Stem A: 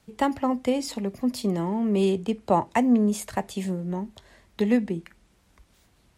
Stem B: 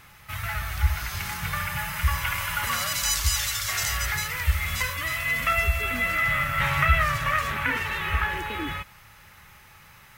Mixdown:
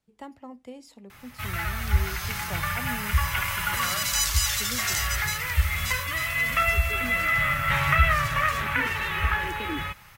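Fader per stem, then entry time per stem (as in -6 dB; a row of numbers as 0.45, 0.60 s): -18.0, +0.5 dB; 0.00, 1.10 s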